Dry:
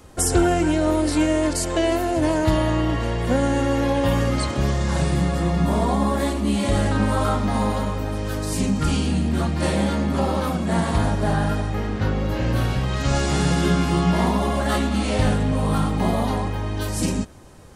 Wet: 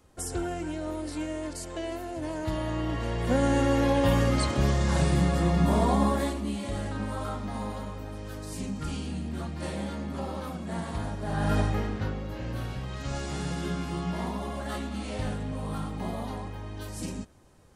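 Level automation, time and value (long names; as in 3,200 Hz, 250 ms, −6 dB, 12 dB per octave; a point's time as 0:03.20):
0:02.24 −14 dB
0:03.53 −3 dB
0:06.05 −3 dB
0:06.62 −12.5 dB
0:11.25 −12.5 dB
0:11.59 0 dB
0:12.24 −12.5 dB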